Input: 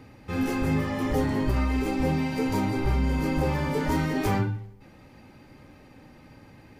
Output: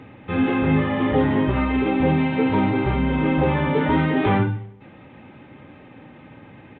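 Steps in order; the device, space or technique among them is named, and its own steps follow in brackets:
Bluetooth headset (high-pass filter 100 Hz 12 dB per octave; downsampling to 8,000 Hz; level +7 dB; SBC 64 kbit/s 16,000 Hz)

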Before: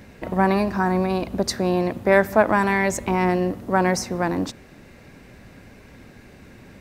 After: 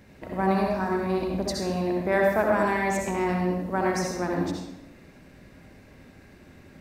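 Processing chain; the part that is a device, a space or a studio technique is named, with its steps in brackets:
bathroom (convolution reverb RT60 0.90 s, pre-delay 59 ms, DRR −0.5 dB)
level −8.5 dB

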